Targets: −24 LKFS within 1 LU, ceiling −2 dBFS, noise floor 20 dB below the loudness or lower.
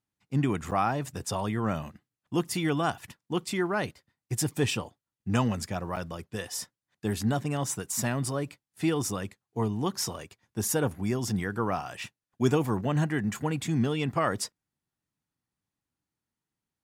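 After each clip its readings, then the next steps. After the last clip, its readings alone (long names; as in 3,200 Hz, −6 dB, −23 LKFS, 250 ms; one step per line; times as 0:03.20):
number of dropouts 2; longest dropout 6.9 ms; integrated loudness −30.0 LKFS; sample peak −11.0 dBFS; target loudness −24.0 LKFS
→ repair the gap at 0:00.71/0:05.96, 6.9 ms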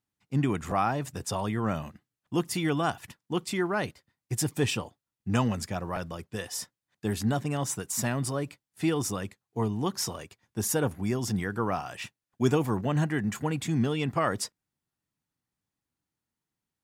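number of dropouts 0; integrated loudness −30.0 LKFS; sample peak −11.0 dBFS; target loudness −24.0 LKFS
→ level +6 dB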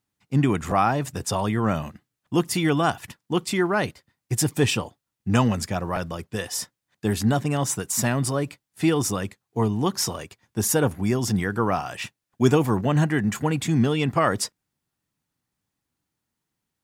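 integrated loudness −24.0 LKFS; sample peak −5.0 dBFS; background noise floor −83 dBFS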